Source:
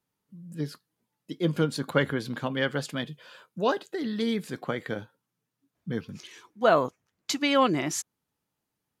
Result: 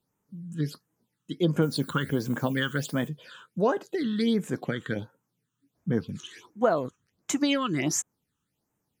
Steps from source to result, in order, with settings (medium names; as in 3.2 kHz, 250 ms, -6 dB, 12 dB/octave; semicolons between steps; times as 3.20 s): compression 6:1, threshold -24 dBFS, peak gain reduction 8.5 dB; 1.61–3.07 s: added noise violet -53 dBFS; phase shifter stages 8, 1.4 Hz, lowest notch 620–4400 Hz; trim +4.5 dB